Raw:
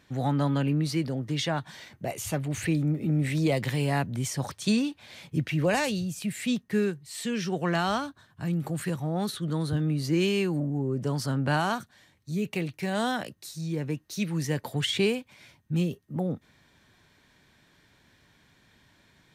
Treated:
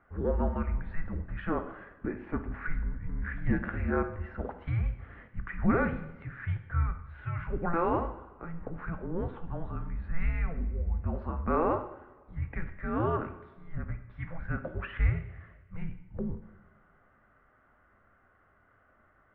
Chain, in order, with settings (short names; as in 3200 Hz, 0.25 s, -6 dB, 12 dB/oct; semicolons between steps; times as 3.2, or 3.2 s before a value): mistuned SSB -340 Hz 270–2100 Hz; two-slope reverb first 0.76 s, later 2.4 s, DRR 6 dB